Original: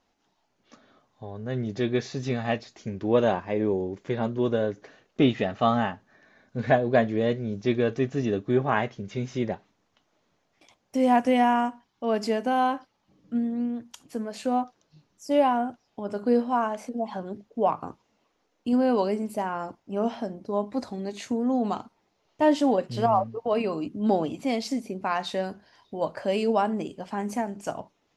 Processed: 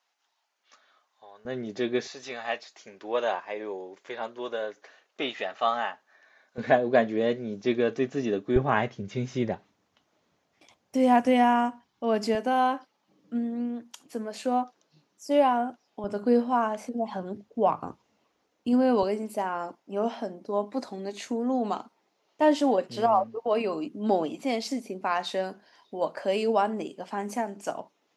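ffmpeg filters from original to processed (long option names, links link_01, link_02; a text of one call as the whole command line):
ffmpeg -i in.wav -af "asetnsamples=nb_out_samples=441:pad=0,asendcmd='1.45 highpass f 270;2.07 highpass f 680;6.58 highpass f 220;8.56 highpass f 62;12.35 highpass f 230;16.04 highpass f 61;19.03 highpass f 250',highpass=1000" out.wav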